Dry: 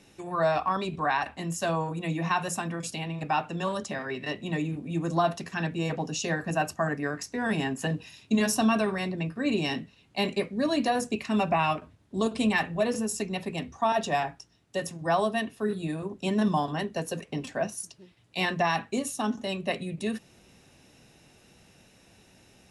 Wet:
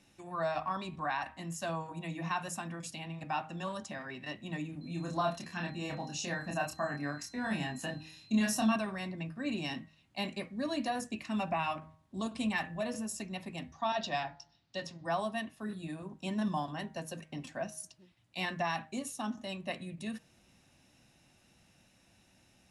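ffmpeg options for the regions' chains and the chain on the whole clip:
ffmpeg -i in.wav -filter_complex "[0:a]asettb=1/sr,asplit=3[link_01][link_02][link_03];[link_01]atrim=end=4.814[link_04];[link_02]atrim=start=4.81:end=8.76,asetpts=PTS-STARTPTS,afade=type=in:duration=0.004:curve=qsin,afade=type=out:start_time=3.946:duration=0.004:curve=qsin,aeval=exprs='val(0)+0.00282*sin(2*PI*4100*n/s)':channel_layout=same,asplit=2[link_05][link_06];[link_06]adelay=28,volume=-3dB[link_07];[link_05][link_07]amix=inputs=2:normalize=0,atrim=end_sample=174195[link_08];[link_03]atrim=start=8.756[link_09];[link_04][link_08]acrossfade=duration=0.004:curve1=hsin:curve2=qsin[link_10];[link_10][link_09]acrossfade=duration=0.004:curve1=qsin:curve2=hsin,asettb=1/sr,asplit=3[link_11][link_12][link_13];[link_11]atrim=end=13.734[link_14];[link_12]atrim=start=13.73:end=15.05,asetpts=PTS-STARTPTS,afade=type=in:duration=0.004:curve=qsin,afade=type=out:start_time=1.316:duration=0.004:curve=qsin,lowpass=frequency=4500:width_type=q:width=2.7,bandreject=frequency=77.63:width_type=h:width=4,bandreject=frequency=155.26:width_type=h:width=4,bandreject=frequency=232.89:width_type=h:width=4,bandreject=frequency=310.52:width_type=h:width=4,bandreject=frequency=388.15:width_type=h:width=4,bandreject=frequency=465.78:width_type=h:width=4,bandreject=frequency=543.41:width_type=h:width=4,bandreject=frequency=621.04:width_type=h:width=4,bandreject=frequency=698.67:width_type=h:width=4,bandreject=frequency=776.3:width_type=h:width=4,bandreject=frequency=853.93:width_type=h:width=4,bandreject=frequency=931.56:width_type=h:width=4,bandreject=frequency=1009.19:width_type=h:width=4[link_15];[link_13]atrim=start=15.046[link_16];[link_14][link_15]acrossfade=duration=0.004:curve1=hsin:curve2=qsin[link_17];[link_17][link_16]acrossfade=duration=0.004:curve1=qsin:curve2=hsin,equalizer=frequency=430:width_type=o:width=0.28:gain=-12.5,bandreject=frequency=157.5:width_type=h:width=4,bandreject=frequency=315:width_type=h:width=4,bandreject=frequency=472.5:width_type=h:width=4,bandreject=frequency=630:width_type=h:width=4,bandreject=frequency=787.5:width_type=h:width=4,bandreject=frequency=945:width_type=h:width=4,bandreject=frequency=1102.5:width_type=h:width=4,bandreject=frequency=1260:width_type=h:width=4,bandreject=frequency=1417.5:width_type=h:width=4,bandreject=frequency=1575:width_type=h:width=4,bandreject=frequency=1732.5:width_type=h:width=4,bandreject=frequency=1890:width_type=h:width=4,bandreject=frequency=2047.5:width_type=h:width=4,bandreject=frequency=2205:width_type=h:width=4,volume=-7.5dB" out.wav

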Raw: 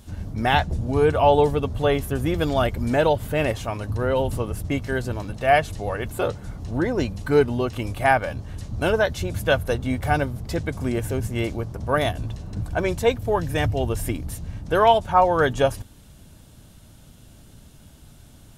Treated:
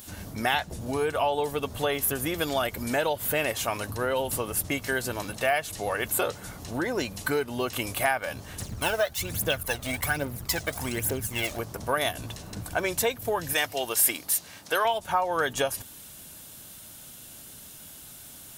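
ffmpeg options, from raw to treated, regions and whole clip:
ffmpeg -i in.wav -filter_complex "[0:a]asettb=1/sr,asplit=3[link_01][link_02][link_03];[link_01]atrim=end=8.604[link_04];[link_02]atrim=start=8.6:end=11.59,asetpts=PTS-STARTPTS,afade=type=in:duration=0.004:curve=qsin,afade=type=out:start_time=2.986:duration=0.004:curve=qsin,aphaser=in_gain=1:out_gain=1:delay=1.7:decay=0.66:speed=1.2:type=triangular,aeval=exprs='sgn(val(0))*max(abs(val(0))-0.01,0)':channel_layout=same[link_05];[link_03]atrim=start=11.586[link_06];[link_04][link_05]acrossfade=duration=0.004:curve1=hsin:curve2=qsin[link_07];[link_07][link_06]acrossfade=duration=0.004:curve1=qsin:curve2=hsin,asettb=1/sr,asplit=3[link_08][link_09][link_10];[link_08]atrim=end=13.534[link_11];[link_09]atrim=start=13.53:end=14.85,asetpts=PTS-STARTPTS,afade=type=in:duration=0.004:curve=qsin,afade=type=out:start_time=1.316:duration=0.004:curve=qsin,highpass=frequency=660:poles=1,equalizer=frequency=4500:width_type=o:width=0.64:gain=3.5[link_12];[link_10]atrim=start=14.846[link_13];[link_11][link_12]acrossfade=duration=0.004:curve1=hsin:curve2=qsin[link_14];[link_14][link_13]acrossfade=duration=0.004:curve1=qsin:curve2=hsin,equalizer=frequency=2000:width=0.6:gain=3.5,acompressor=threshold=-23dB:ratio=6,aemphasis=mode=production:type=bsi,volume=1dB" out.wav

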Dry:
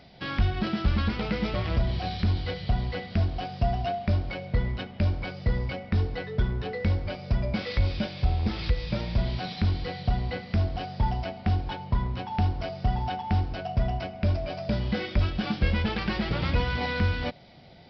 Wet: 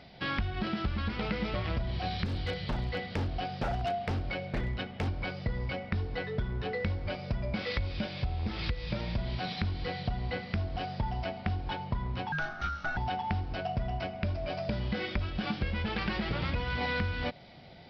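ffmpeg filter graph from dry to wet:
ffmpeg -i in.wav -filter_complex "[0:a]asettb=1/sr,asplit=3[link_01][link_02][link_03];[link_01]atrim=end=2.254[link_04];[link_02]atrim=start=2.25:end=5.08,asetpts=PTS-STARTPTS,afade=type=in:duration=0.004:curve=qsin,afade=type=out:start_time=2.826:duration=0.004:curve=qsin,aeval=exprs='0.075*(abs(mod(val(0)/0.075+3,4)-2)-1)':channel_layout=same,equalizer=frequency=1000:width=7.5:gain=-4[link_05];[link_03]atrim=start=5.076[link_06];[link_04][link_05]acrossfade=duration=0.004:curve1=hsin:curve2=qsin[link_07];[link_07][link_06]acrossfade=duration=0.004:curve1=qsin:curve2=hsin,asettb=1/sr,asplit=3[link_08][link_09][link_10];[link_08]atrim=end=12.324[link_11];[link_09]atrim=start=12.32:end=12.97,asetpts=PTS-STARTPTS,afade=type=in:duration=0.004:curve=qsin,afade=type=out:start_time=0.646:duration=0.004:curve=qsin,lowshelf=frequency=360:width_type=q:width=3:gain=-14,aeval=exprs='val(0)*sin(2*PI*730*n/s)':channel_layout=same[link_12];[link_10]atrim=start=12.966[link_13];[link_11][link_12]acrossfade=duration=0.004:curve1=hsin:curve2=qsin[link_14];[link_14][link_13]acrossfade=duration=0.004:curve1=qsin:curve2=hsin,highshelf=frequency=4500:gain=-11,acompressor=threshold=-28dB:ratio=6,tiltshelf=frequency=1300:gain=-3,volume=2dB" out.wav

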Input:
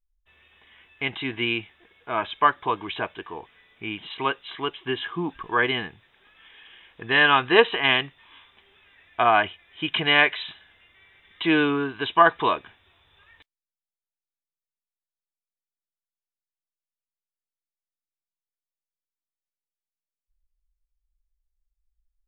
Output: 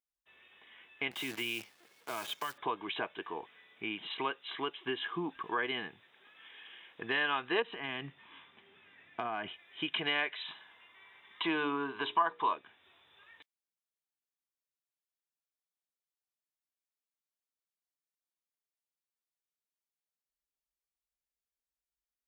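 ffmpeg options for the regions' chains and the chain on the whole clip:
ffmpeg -i in.wav -filter_complex "[0:a]asettb=1/sr,asplit=3[link_01][link_02][link_03];[link_01]atrim=end=1.114[link_04];[link_02]atrim=start=1.11:end=2.58,asetpts=PTS-STARTPTS,afade=type=in:duration=0.004:curve=qsin,afade=type=out:start_time=1.466:duration=0.004:curve=qsin,acrusher=bits=7:dc=4:mix=0:aa=0.000001,acrossover=split=130|3000[link_05][link_06][link_07];[link_06]acompressor=threshold=-31dB:ratio=6:attack=3.2:release=140:knee=2.83:detection=peak[link_08];[link_05][link_08][link_07]amix=inputs=3:normalize=0[link_09];[link_03]atrim=start=2.576[link_10];[link_04][link_09]acrossfade=duration=0.004:curve1=hsin:curve2=qsin[link_11];[link_11][link_10]acrossfade=duration=0.004:curve1=qsin:curve2=hsin,asettb=1/sr,asplit=3[link_12][link_13][link_14];[link_12]atrim=end=7.624[link_15];[link_13]atrim=start=7.62:end=9.48,asetpts=PTS-STARTPTS,afade=type=in:duration=0.004:curve=qsin,afade=type=out:start_time=1.856:duration=0.004:curve=qsin,bass=frequency=250:gain=14,treble=frequency=4000:gain=-9,acompressor=threshold=-28dB:ratio=4:attack=3.2:release=140:knee=1:detection=peak,highpass=120[link_16];[link_14]atrim=start=9.476[link_17];[link_15][link_16]acrossfade=duration=0.004:curve1=hsin:curve2=qsin[link_18];[link_18][link_17]acrossfade=duration=0.004:curve1=qsin:curve2=hsin,asettb=1/sr,asplit=3[link_19][link_20][link_21];[link_19]atrim=end=10.464[link_22];[link_20]atrim=start=10.46:end=12.54,asetpts=PTS-STARTPTS,afade=type=in:duration=0.004:curve=qsin,afade=type=out:start_time=2.076:duration=0.004:curve=qsin,equalizer=frequency=1000:width_type=o:width=0.48:gain=10,bandreject=frequency=60:width_type=h:width=6,bandreject=frequency=120:width_type=h:width=6,bandreject=frequency=180:width_type=h:width=6,bandreject=frequency=240:width_type=h:width=6,bandreject=frequency=300:width_type=h:width=6,bandreject=frequency=360:width_type=h:width=6,bandreject=frequency=420:width_type=h:width=6,bandreject=frequency=480:width_type=h:width=6,bandreject=frequency=540:width_type=h:width=6,bandreject=frequency=600:width_type=h:width=6[link_23];[link_21]atrim=start=12.536[link_24];[link_22][link_23]acrossfade=duration=0.004:curve1=hsin:curve2=qsin[link_25];[link_25][link_24]acrossfade=duration=0.004:curve1=qsin:curve2=hsin,highpass=200,acompressor=threshold=-31dB:ratio=2.5,volume=-3dB" out.wav

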